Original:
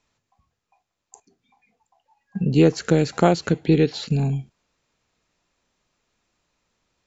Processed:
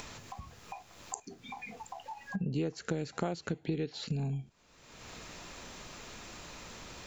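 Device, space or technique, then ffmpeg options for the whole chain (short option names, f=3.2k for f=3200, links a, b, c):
upward and downward compression: -af "acompressor=mode=upward:threshold=-24dB:ratio=2.5,acompressor=threshold=-32dB:ratio=4,volume=-1.5dB"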